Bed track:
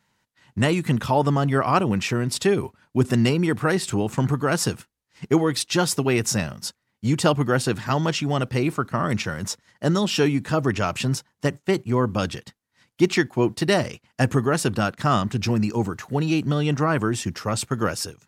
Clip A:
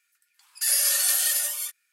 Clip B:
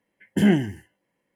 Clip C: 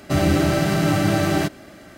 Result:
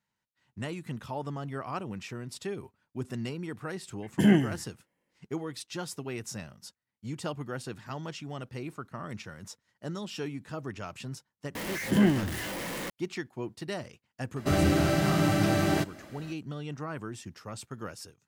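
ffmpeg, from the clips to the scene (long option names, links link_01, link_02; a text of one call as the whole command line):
ffmpeg -i bed.wav -i cue0.wav -i cue1.wav -i cue2.wav -filter_complex "[2:a]asplit=2[link_01][link_02];[0:a]volume=-16dB[link_03];[link_02]aeval=exprs='val(0)+0.5*0.0668*sgn(val(0))':channel_layout=same[link_04];[link_01]atrim=end=1.35,asetpts=PTS-STARTPTS,volume=-3dB,afade=type=in:duration=0.004:curve=hsin,afade=type=out:start_time=1.346:duration=0.004:curve=hsin,adelay=3820[link_05];[link_04]atrim=end=1.35,asetpts=PTS-STARTPTS,volume=-6dB,afade=type=in:duration=0.004:curve=hsin,afade=type=out:start_time=1.346:duration=0.004:curve=hsin,adelay=11550[link_06];[3:a]atrim=end=1.97,asetpts=PTS-STARTPTS,volume=-6dB,afade=type=in:duration=0.004:curve=hsin,afade=type=out:start_time=1.966:duration=0.004:curve=hsin,adelay=14360[link_07];[link_03][link_05][link_06][link_07]amix=inputs=4:normalize=0" out.wav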